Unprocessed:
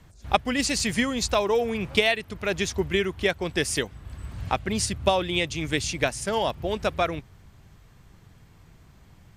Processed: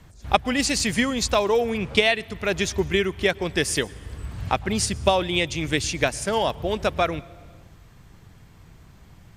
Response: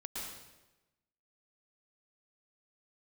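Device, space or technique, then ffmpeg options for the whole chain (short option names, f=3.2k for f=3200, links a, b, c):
compressed reverb return: -filter_complex "[0:a]asettb=1/sr,asplit=3[a][b][c];[a]atrim=end=1.784[d];[b]atrim=start=1.78:end=2.18,asetpts=PTS-STARTPTS,afade=t=in:d=0.004:c=qsin,afade=t=out:st=0.396:d=0.004:c=qsin,lowpass=10k[e];[c]atrim=start=2.176[f];[d][e]acrossfade=d=0.004:c1=hsin:c2=qsin[g];[g][f]acrossfade=d=0.004:c1=qsin:c2=hsin,asplit=2[h][i];[1:a]atrim=start_sample=2205[j];[i][j]afir=irnorm=-1:irlink=0,acompressor=threshold=-33dB:ratio=6,volume=-11dB[k];[h][k]amix=inputs=2:normalize=0,volume=2dB"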